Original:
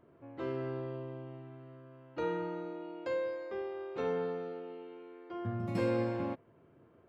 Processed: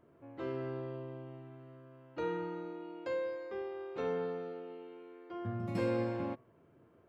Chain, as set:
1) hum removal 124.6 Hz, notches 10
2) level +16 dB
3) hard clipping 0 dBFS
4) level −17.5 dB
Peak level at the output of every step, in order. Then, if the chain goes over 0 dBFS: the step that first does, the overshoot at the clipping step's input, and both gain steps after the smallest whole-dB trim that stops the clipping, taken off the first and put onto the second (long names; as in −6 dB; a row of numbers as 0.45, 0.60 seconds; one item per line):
−20.5, −4.5, −4.5, −22.0 dBFS
no step passes full scale